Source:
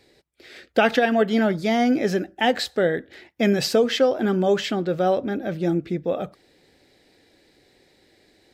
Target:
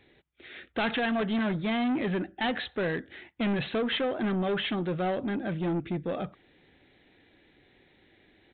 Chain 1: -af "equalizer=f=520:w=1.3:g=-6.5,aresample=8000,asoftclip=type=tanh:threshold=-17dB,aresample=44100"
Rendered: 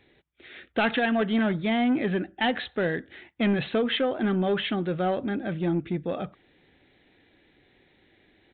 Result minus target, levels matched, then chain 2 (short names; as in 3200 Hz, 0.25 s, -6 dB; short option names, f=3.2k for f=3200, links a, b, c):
soft clip: distortion -7 dB
-af "equalizer=f=520:w=1.3:g=-6.5,aresample=8000,asoftclip=type=tanh:threshold=-24.5dB,aresample=44100"